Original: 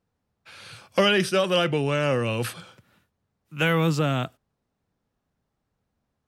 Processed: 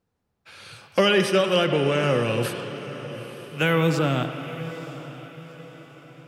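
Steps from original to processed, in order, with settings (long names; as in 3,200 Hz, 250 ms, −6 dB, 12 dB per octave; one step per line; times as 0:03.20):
parametric band 390 Hz +2.5 dB 0.77 octaves
feedback delay with all-pass diffusion 904 ms, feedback 43%, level −14 dB
on a send at −7 dB: convolution reverb RT60 2.4 s, pre-delay 64 ms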